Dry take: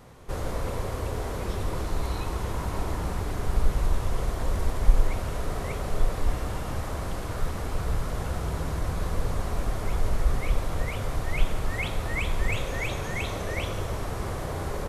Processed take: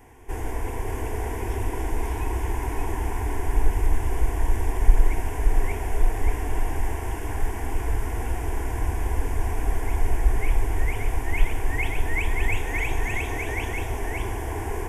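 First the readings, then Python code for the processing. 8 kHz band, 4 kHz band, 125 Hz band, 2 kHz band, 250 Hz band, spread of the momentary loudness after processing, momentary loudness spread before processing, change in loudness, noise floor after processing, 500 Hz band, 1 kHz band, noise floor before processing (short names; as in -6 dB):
+2.0 dB, -3.5 dB, +1.5 dB, +4.0 dB, +1.0 dB, 5 LU, 4 LU, +2.5 dB, -30 dBFS, +0.5 dB, +2.5 dB, -33 dBFS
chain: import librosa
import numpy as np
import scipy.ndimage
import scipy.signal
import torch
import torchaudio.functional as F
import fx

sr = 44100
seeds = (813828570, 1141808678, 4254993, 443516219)

y = fx.fixed_phaser(x, sr, hz=840.0, stages=8)
y = y + 10.0 ** (-4.0 / 20.0) * np.pad(y, (int(575 * sr / 1000.0), 0))[:len(y)]
y = F.gain(torch.from_numpy(y), 3.5).numpy()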